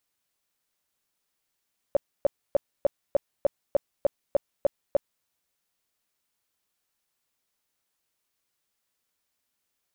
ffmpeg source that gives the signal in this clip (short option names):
-f lavfi -i "aevalsrc='0.168*sin(2*PI*567*mod(t,0.3))*lt(mod(t,0.3),9/567)':d=3.3:s=44100"